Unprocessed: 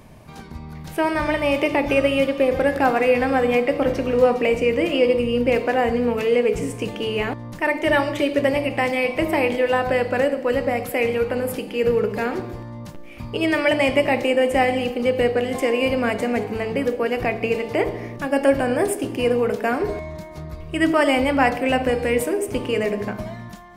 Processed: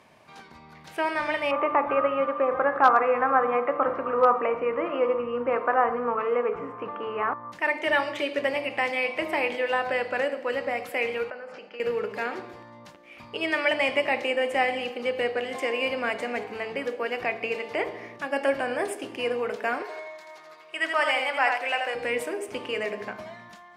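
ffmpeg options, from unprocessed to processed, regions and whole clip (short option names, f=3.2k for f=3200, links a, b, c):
-filter_complex "[0:a]asettb=1/sr,asplit=3[a][b][c];[a]atrim=end=1.514[d];[b]atrim=start=1.51:end=7.52,asetpts=PTS-STARTPTS,afade=t=in:d=0.004:c=qsin,afade=t=out:st=6.006:d=0.004:c=qsin,lowpass=f=1.2k:t=q:w=5.9,volume=3dB,asoftclip=hard,volume=-3dB[e];[c]atrim=start=7.516[f];[d][e]acrossfade=d=0.004:c1=hsin:c2=qsin[g];[g][f]acrossfade=d=0.004:c1=qsin:c2=hsin,asettb=1/sr,asplit=3[h][i][j];[h]atrim=end=11.304[k];[i]atrim=start=11.3:end=11.8,asetpts=PTS-STARTPTS,afade=t=in:d=0.004:c=qsin,afade=t=out:st=0.496:d=0.004:c=qsin,agate=range=-33dB:threshold=-29dB:ratio=3:release=100:detection=peak,acompressor=threshold=-29dB:ratio=10:attack=3.2:release=140:knee=1:detection=peak,highpass=f=140:w=0.5412,highpass=f=140:w=1.3066,equalizer=f=290:t=q:w=4:g=-9,equalizer=f=640:t=q:w=4:g=7,equalizer=f=1.4k:t=q:w=4:g=9,equalizer=f=3.5k:t=q:w=4:g=-9,lowpass=f=5.7k:w=0.5412,lowpass=f=5.7k:w=1.3066[l];[j]atrim=start=11.796[m];[k][l]acrossfade=d=0.004:c1=hsin:c2=qsin[n];[n][m]acrossfade=d=0.004:c1=qsin:c2=hsin,asettb=1/sr,asplit=3[o][p][q];[o]atrim=end=19.824[r];[p]atrim=start=19.82:end=21.95,asetpts=PTS-STARTPTS,afade=t=in:d=0.004:c=qsin,afade=t=out:st=2.126:d=0.004:c=qsin,highpass=600,aecho=1:1:83:0.562,atrim=end_sample=93933[s];[q]atrim=start=21.946[t];[r][s]acrossfade=d=0.004:c1=hsin:c2=qsin[u];[u][t]acrossfade=d=0.004:c1=qsin:c2=hsin,highpass=f=1.2k:p=1,aemphasis=mode=reproduction:type=50fm"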